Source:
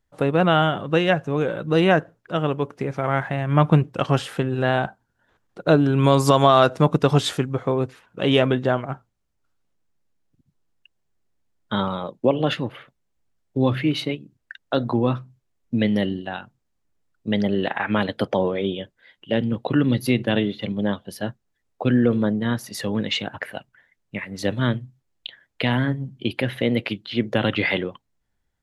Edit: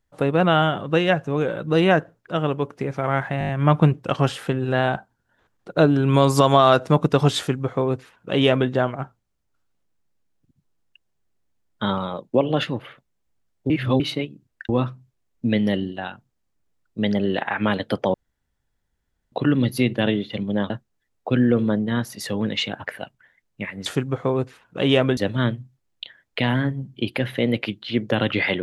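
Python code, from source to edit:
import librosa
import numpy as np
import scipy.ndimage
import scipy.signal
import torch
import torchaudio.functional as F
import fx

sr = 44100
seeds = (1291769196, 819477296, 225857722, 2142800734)

y = fx.edit(x, sr, fx.stutter(start_s=3.39, slice_s=0.02, count=6),
    fx.duplicate(start_s=7.28, length_s=1.31, to_s=24.4),
    fx.reverse_span(start_s=13.6, length_s=0.3),
    fx.cut(start_s=14.59, length_s=0.39),
    fx.room_tone_fill(start_s=18.43, length_s=1.18),
    fx.cut(start_s=20.99, length_s=0.25), tone=tone)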